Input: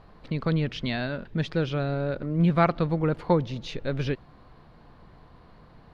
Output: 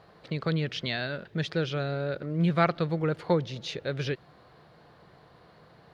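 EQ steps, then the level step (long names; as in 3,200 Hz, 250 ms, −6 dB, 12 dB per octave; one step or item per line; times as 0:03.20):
Bessel high-pass filter 190 Hz, order 2
dynamic equaliser 660 Hz, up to −4 dB, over −36 dBFS, Q 0.89
graphic EQ with 15 bands 250 Hz −10 dB, 1,000 Hz −6 dB, 2,500 Hz −3 dB
+3.5 dB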